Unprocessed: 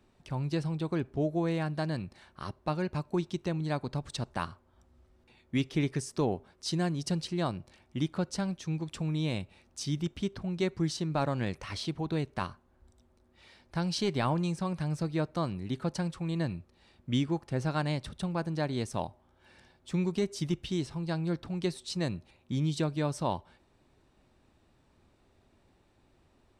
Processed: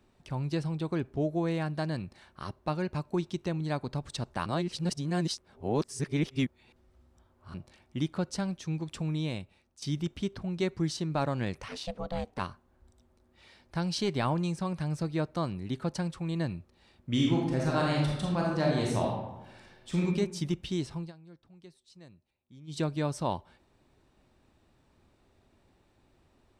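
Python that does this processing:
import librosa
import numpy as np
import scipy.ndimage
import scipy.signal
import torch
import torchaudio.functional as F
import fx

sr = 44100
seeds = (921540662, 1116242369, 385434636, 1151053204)

y = fx.ring_mod(x, sr, carrier_hz=350.0, at=(11.68, 12.39))
y = fx.reverb_throw(y, sr, start_s=17.1, length_s=2.92, rt60_s=1.0, drr_db=-3.0)
y = fx.edit(y, sr, fx.reverse_span(start_s=4.46, length_s=3.08),
    fx.fade_out_to(start_s=9.12, length_s=0.7, floor_db=-15.0),
    fx.fade_down_up(start_s=20.94, length_s=1.91, db=-21.0, fade_s=0.18, curve='qsin'), tone=tone)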